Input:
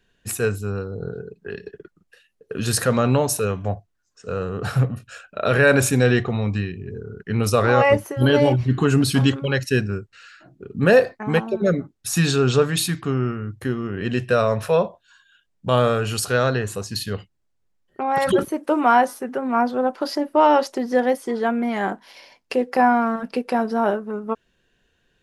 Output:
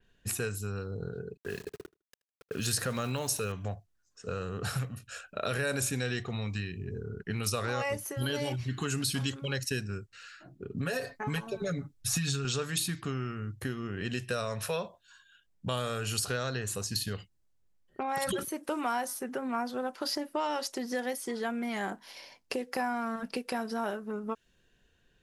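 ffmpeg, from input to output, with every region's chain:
-filter_complex "[0:a]asettb=1/sr,asplit=3[a][b][c];[a]atrim=end=1.374[d];[b]atrim=start=1.37:end=3.52,asetpts=PTS-STARTPTS,afade=t=in:d=0.004:c=qsin,afade=t=out:st=2.146:d=0.004:c=qsin,aeval=exprs='val(0)*gte(abs(val(0)),0.00841)':c=same,aecho=1:1:78|156:0.0631|0.0114,atrim=end_sample=94815[e];[c]atrim=start=3.516[f];[d][e]acrossfade=d=0.004:c1=hsin:c2=qsin[g];[g][f]acrossfade=d=0.004:c1=qsin:c2=hsin,asettb=1/sr,asplit=3[h][i][j];[h]atrim=end=10.774[k];[i]atrim=start=10.77:end=12.45,asetpts=PTS-STARTPTS,afade=t=in:d=0.004:c=qsin,afade=t=out:st=1.676:d=0.004:c=qsin,aecho=1:1:7.1:0.79,atrim=end_sample=74088,asubboost=boost=6:cutoff=170,acompressor=threshold=-15dB:ratio=4:attack=3.2:release=140:knee=1:detection=peak[l];[j]atrim=start=12.446[m];[k][l]acrossfade=d=0.004:c1=hsin:c2=qsin[n];[n][m]acrossfade=d=0.004:c1=qsin:c2=hsin,lowshelf=f=160:g=5,acrossover=split=1400|4800[o][p][q];[o]acompressor=threshold=-29dB:ratio=4[r];[p]acompressor=threshold=-34dB:ratio=4[s];[q]acompressor=threshold=-36dB:ratio=4[t];[r][s][t]amix=inputs=3:normalize=0,adynamicequalizer=threshold=0.00355:dfrequency=4300:dqfactor=0.7:tfrequency=4300:tqfactor=0.7:attack=5:release=100:ratio=0.375:range=3.5:mode=boostabove:tftype=highshelf,volume=-4.5dB"

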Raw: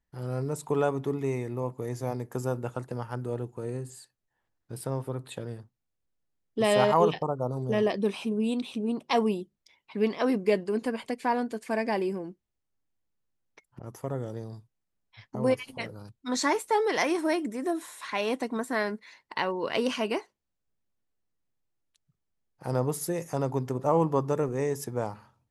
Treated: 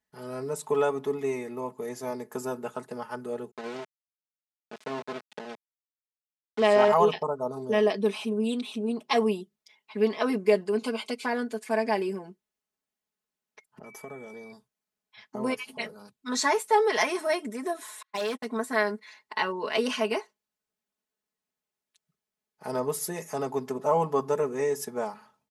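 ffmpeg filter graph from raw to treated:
-filter_complex "[0:a]asettb=1/sr,asplit=3[a][b][c];[a]atrim=end=3.514[d];[b]atrim=start=3.51:end=6.88,asetpts=PTS-STARTPTS,afade=t=in:d=0.004:c=qsin,afade=t=out:st=3.366:d=0.004:c=qsin,aeval=exprs='val(0)*gte(abs(val(0)),0.0237)':c=same,highpass=140,lowpass=4.6k[e];[c]atrim=start=6.876[f];[d][e]acrossfade=d=0.004:c1=hsin:c2=qsin[g];[g][f]acrossfade=d=0.004:c1=qsin:c2=hsin,asettb=1/sr,asplit=3[h][i][j];[h]atrim=end=10.784[k];[i]atrim=start=10.78:end=11.26,asetpts=PTS-STARTPTS,afade=t=in:d=0.004:c=qsin,afade=t=out:st=0.476:d=0.004:c=qsin,asuperstop=centerf=1800:order=4:qfactor=3.9,equalizer=f=3.7k:w=0.6:g=7[l];[j]atrim=start=11.256[m];[k][l]acrossfade=d=0.004:c1=hsin:c2=qsin[n];[n][m]acrossfade=d=0.004:c1=qsin:c2=hsin,asettb=1/sr,asplit=3[o][p][q];[o]atrim=end=13.844[r];[p]atrim=start=13.84:end=14.52,asetpts=PTS-STARTPTS,afade=t=in:d=0.004:c=qsin,afade=t=out:st=0.676:d=0.004:c=qsin,acompressor=threshold=-37dB:ratio=2.5:attack=3.2:release=140:knee=1:detection=peak,aeval=exprs='val(0)+0.00224*sin(2*PI*2300*n/s)':c=same[s];[q]atrim=start=14.516[t];[r][s]acrossfade=d=0.004:c1=hsin:c2=qsin[u];[u][t]acrossfade=d=0.004:c1=qsin:c2=hsin,asettb=1/sr,asplit=3[v][w][x];[v]atrim=end=18.024[y];[w]atrim=start=18.02:end=18.46,asetpts=PTS-STARTPTS,afade=t=in:d=0.004:c=qsin,afade=t=out:st=0.436:d=0.004:c=qsin,agate=range=-48dB:threshold=-32dB:ratio=16:release=100:detection=peak,asoftclip=type=hard:threshold=-28.5dB[z];[x]atrim=start=18.456[aa];[y][z]acrossfade=d=0.004:c1=hsin:c2=qsin[ab];[ab][aa]acrossfade=d=0.004:c1=qsin:c2=hsin,highpass=f=380:p=1,aecho=1:1:4.7:0.89"

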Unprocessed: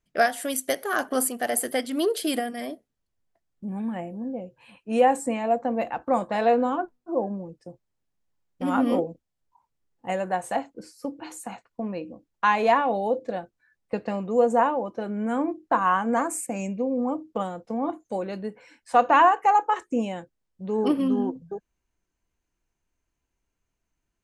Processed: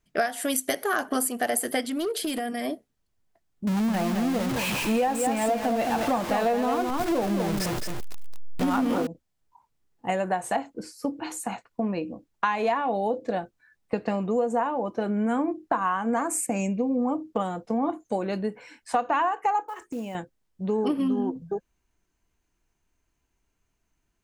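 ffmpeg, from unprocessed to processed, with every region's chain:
-filter_complex "[0:a]asettb=1/sr,asplit=3[a][b][c];[a]atrim=end=1.844[d];[b]atrim=start=1.84:end=2.65,asetpts=PTS-STARTPTS,afade=t=in:d=0.004:c=qsin,afade=t=out:st=0.806:d=0.004:c=qsin,volume=20dB,asoftclip=hard,volume=-20dB,acompressor=threshold=-31dB:ratio=5:attack=3.2:release=140:knee=1:detection=peak[e];[c]atrim=start=2.646[f];[d][e]acrossfade=d=0.004:c1=hsin:c2=qsin[g];[g][f]acrossfade=d=0.004:c1=qsin:c2=hsin,asettb=1/sr,asplit=3[h][i][j];[h]atrim=end=3.674[k];[i]atrim=start=3.67:end=9.07,asetpts=PTS-STARTPTS,afade=t=in:d=0.004:c=qsin,afade=t=out:st=5.396:d=0.004:c=qsin,aeval=exprs='val(0)+0.5*0.0398*sgn(val(0))':c=same,aecho=1:1:215:0.473,atrim=end_sample=238140[l];[j]atrim=start=9.066[m];[k][l]acrossfade=d=0.004:c1=hsin:c2=qsin[n];[n][m]acrossfade=d=0.004:c1=qsin:c2=hsin,asettb=1/sr,asplit=3[o][p][q];[o]atrim=end=19.684[r];[p]atrim=start=19.68:end=20.15,asetpts=PTS-STARTPTS,afade=t=in:d=0.004:c=qsin,afade=t=out:st=0.466:d=0.004:c=qsin,equalizer=f=3.9k:t=o:w=0.29:g=-9,acompressor=threshold=-40dB:ratio=2.5:attack=3.2:release=140:knee=1:detection=peak,acrusher=bits=6:mode=log:mix=0:aa=0.000001[s];[q]atrim=start=20.146[t];[r][s]acrossfade=d=0.004:c1=hsin:c2=qsin[u];[u][t]acrossfade=d=0.004:c1=qsin:c2=hsin,bandreject=f=530:w=12,acompressor=threshold=-27dB:ratio=6,volume=5dB"

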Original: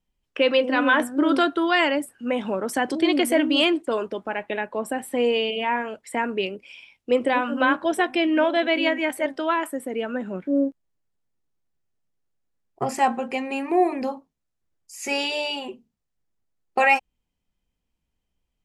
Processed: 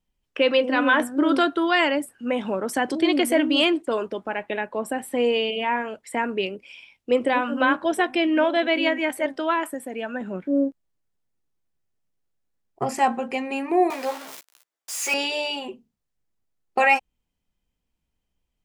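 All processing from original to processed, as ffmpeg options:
-filter_complex "[0:a]asettb=1/sr,asplit=3[a][b][c];[a]atrim=end=9.744[d];[b]atrim=start=9.74:end=10.21,asetpts=PTS-STARTPTS,afade=t=in:d=0.004:c=qsin,afade=t=out:st=0.466:d=0.004:c=qsin,lowshelf=f=150:g=-11,bandreject=f=930:w=17,aecho=1:1:1.2:0.4,atrim=end_sample=20727[e];[c]atrim=start=10.206[f];[d][e]acrossfade=d=0.004:c1=hsin:c2=qsin[g];[g][f]acrossfade=d=0.004:c1=qsin:c2=hsin,asettb=1/sr,asplit=3[h][i][j];[h]atrim=end=13.904[k];[i]atrim=start=13.9:end=15.14,asetpts=PTS-STARTPTS,afade=t=in:d=0.004:c=qsin,afade=t=out:st=1.236:d=0.004:c=qsin,aeval=exprs='val(0)+0.5*0.0355*sgn(val(0))':c=same,highpass=610,asplit=2[l][m];[m]adelay=15,volume=-4dB[n];[l][n]amix=inputs=2:normalize=0,atrim=end_sample=54684[o];[j]atrim=start=15.136[p];[k][o]acrossfade=d=0.004:c1=hsin:c2=qsin[q];[q][p]acrossfade=d=0.004:c1=qsin:c2=hsin"

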